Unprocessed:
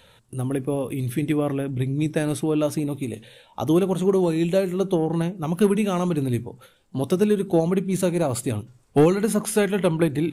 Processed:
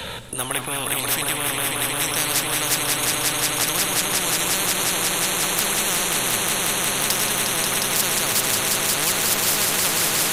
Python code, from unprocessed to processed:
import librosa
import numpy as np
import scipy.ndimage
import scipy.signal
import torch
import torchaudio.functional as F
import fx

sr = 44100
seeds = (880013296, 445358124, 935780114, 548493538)

y = fx.echo_swell(x, sr, ms=179, loudest=5, wet_db=-7)
y = fx.transient(y, sr, attack_db=-5, sustain_db=1)
y = fx.spectral_comp(y, sr, ratio=10.0)
y = y * 10.0 ** (4.5 / 20.0)